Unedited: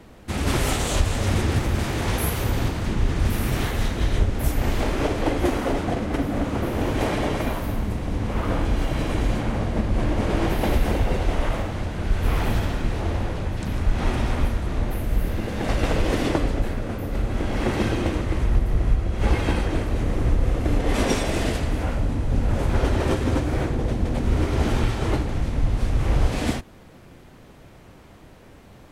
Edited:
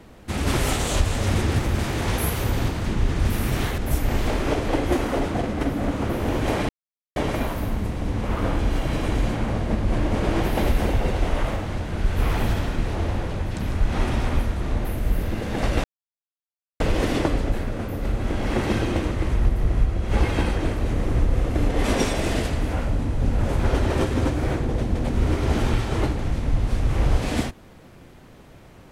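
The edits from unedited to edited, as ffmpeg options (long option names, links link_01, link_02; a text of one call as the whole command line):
ffmpeg -i in.wav -filter_complex "[0:a]asplit=4[link_01][link_02][link_03][link_04];[link_01]atrim=end=3.782[link_05];[link_02]atrim=start=4.308:end=7.22,asetpts=PTS-STARTPTS,afade=type=out:start_time=2.908:duration=0.004:curve=hsin,apad=pad_dur=0.47[link_06];[link_03]atrim=start=7.22:end=15.9,asetpts=PTS-STARTPTS,afade=type=in:duration=0.004:curve=hsin,afade=type=out:start_time=8.676:duration=0.004:curve=hsin,apad=pad_dur=0.96[link_07];[link_04]atrim=start=15.9,asetpts=PTS-STARTPTS,afade=type=in:duration=0.004:curve=hsin[link_08];[link_06][link_07][link_08]concat=n=3:v=0:a=1[link_09];[link_05][link_09]acrossfade=duration=0.004:curve1=hsin:curve2=hsin" out.wav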